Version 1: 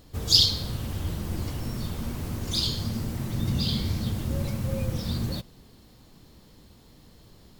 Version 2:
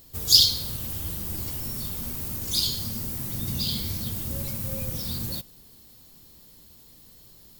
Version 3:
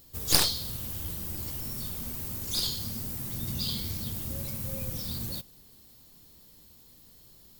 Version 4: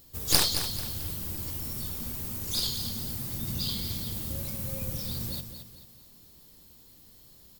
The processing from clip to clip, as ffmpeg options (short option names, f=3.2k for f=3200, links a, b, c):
-af "aemphasis=mode=production:type=75fm,volume=-4.5dB"
-af "aeval=exprs='0.891*(cos(1*acos(clip(val(0)/0.891,-1,1)))-cos(1*PI/2))+0.316*(cos(3*acos(clip(val(0)/0.891,-1,1)))-cos(3*PI/2))+0.2*(cos(4*acos(clip(val(0)/0.891,-1,1)))-cos(4*PI/2))+0.0562*(cos(5*acos(clip(val(0)/0.891,-1,1)))-cos(5*PI/2))+0.158*(cos(7*acos(clip(val(0)/0.891,-1,1)))-cos(7*PI/2))':c=same,volume=-3.5dB"
-af "aecho=1:1:220|440|660|880:0.355|0.138|0.054|0.021"